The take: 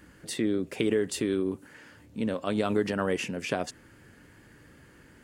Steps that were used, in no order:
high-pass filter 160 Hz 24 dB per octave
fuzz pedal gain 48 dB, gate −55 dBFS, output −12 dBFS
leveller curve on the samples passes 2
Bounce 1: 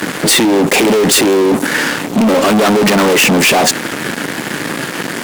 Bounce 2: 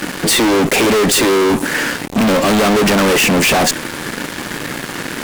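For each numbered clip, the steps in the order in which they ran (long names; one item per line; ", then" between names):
fuzz pedal, then high-pass filter, then leveller curve on the samples
high-pass filter, then fuzz pedal, then leveller curve on the samples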